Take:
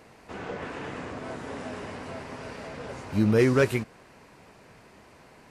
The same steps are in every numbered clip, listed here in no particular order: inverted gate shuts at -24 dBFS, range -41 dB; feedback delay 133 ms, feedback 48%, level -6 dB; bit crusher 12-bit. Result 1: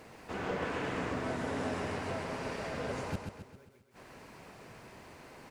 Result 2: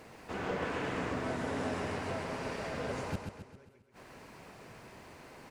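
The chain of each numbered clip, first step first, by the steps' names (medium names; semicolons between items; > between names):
inverted gate > bit crusher > feedback delay; bit crusher > inverted gate > feedback delay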